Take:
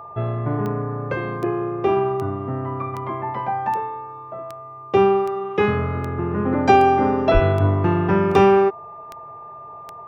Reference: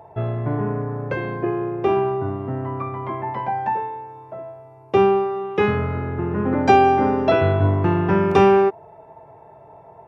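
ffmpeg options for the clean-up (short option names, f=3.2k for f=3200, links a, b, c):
-filter_complex "[0:a]adeclick=t=4,bandreject=f=1.2k:w=30,asplit=3[a][b][c];[a]afade=t=out:st=7.33:d=0.02[d];[b]highpass=f=140:w=0.5412,highpass=f=140:w=1.3066,afade=t=in:st=7.33:d=0.02,afade=t=out:st=7.45:d=0.02[e];[c]afade=t=in:st=7.45:d=0.02[f];[d][e][f]amix=inputs=3:normalize=0"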